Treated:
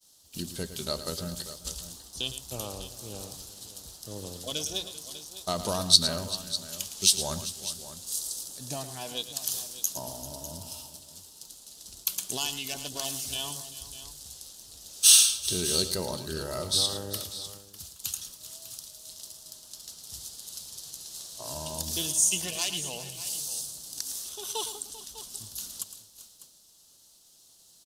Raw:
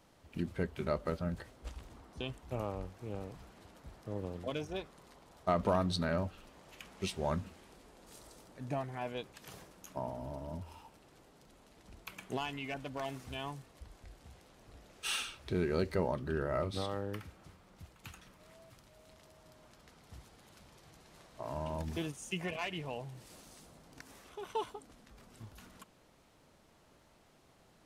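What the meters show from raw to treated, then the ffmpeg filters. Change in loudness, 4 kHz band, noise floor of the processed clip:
+10.0 dB, +18.5 dB, −58 dBFS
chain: -af "aexciter=amount=15.4:drive=5.9:freq=3400,aecho=1:1:110|391|599:0.251|0.158|0.2,agate=range=-33dB:threshold=-42dB:ratio=3:detection=peak,volume=-1dB"

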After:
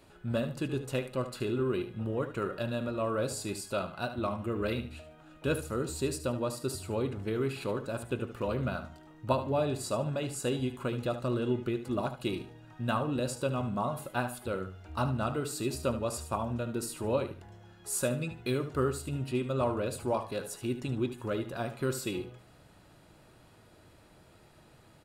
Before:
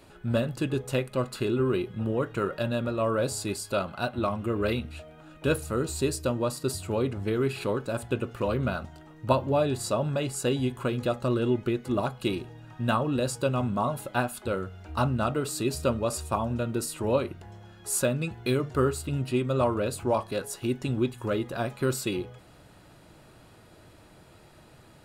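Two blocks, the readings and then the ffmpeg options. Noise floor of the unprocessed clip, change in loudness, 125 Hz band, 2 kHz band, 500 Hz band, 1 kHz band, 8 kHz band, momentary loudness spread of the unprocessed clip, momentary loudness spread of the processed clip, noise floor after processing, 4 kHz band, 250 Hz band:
−54 dBFS, −4.5 dB, −4.5 dB, −4.5 dB, −4.5 dB, −4.5 dB, −4.5 dB, 6 LU, 6 LU, −58 dBFS, −4.5 dB, −4.5 dB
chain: -af "aecho=1:1:74|148|222:0.266|0.0612|0.0141,volume=-5dB"

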